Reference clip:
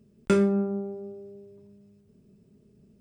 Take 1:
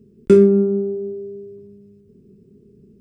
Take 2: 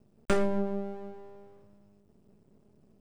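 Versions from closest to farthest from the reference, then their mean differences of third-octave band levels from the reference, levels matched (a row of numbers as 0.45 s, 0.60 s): 1, 2; 2.5 dB, 4.0 dB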